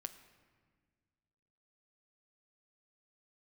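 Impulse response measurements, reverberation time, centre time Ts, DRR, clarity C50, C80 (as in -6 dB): 1.7 s, 11 ms, 9.0 dB, 12.5 dB, 13.5 dB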